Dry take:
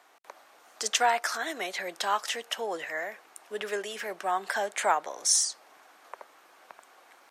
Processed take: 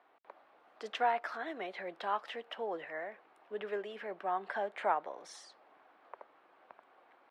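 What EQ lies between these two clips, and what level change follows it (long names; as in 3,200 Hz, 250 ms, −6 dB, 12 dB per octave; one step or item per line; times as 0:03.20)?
high-frequency loss of the air 460 metres
parametric band 1,700 Hz −3 dB 1.4 octaves
−3.0 dB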